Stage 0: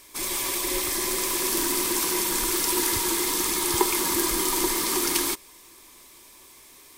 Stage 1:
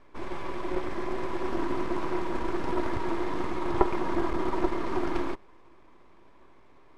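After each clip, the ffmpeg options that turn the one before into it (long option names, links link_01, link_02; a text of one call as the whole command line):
ffmpeg -i in.wav -af "aeval=exprs='max(val(0),0)':channel_layout=same,lowpass=1200,volume=5dB" out.wav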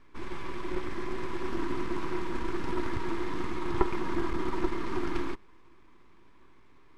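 ffmpeg -i in.wav -af "equalizer=frequency=630:width=1.6:gain=-12.5" out.wav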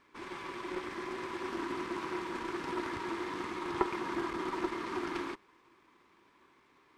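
ffmpeg -i in.wav -af "highpass=frequency=410:poles=1" out.wav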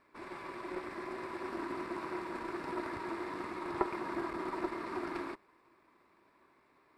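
ffmpeg -i in.wav -af "equalizer=frequency=630:width_type=o:width=0.33:gain=9,equalizer=frequency=3150:width_type=o:width=0.33:gain=-10,equalizer=frequency=6300:width_type=o:width=0.33:gain=-10,volume=-2.5dB" out.wav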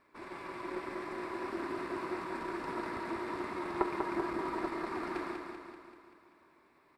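ffmpeg -i in.wav -af "aecho=1:1:193|386|579|772|965|1158|1351:0.562|0.315|0.176|0.0988|0.0553|0.031|0.0173" out.wav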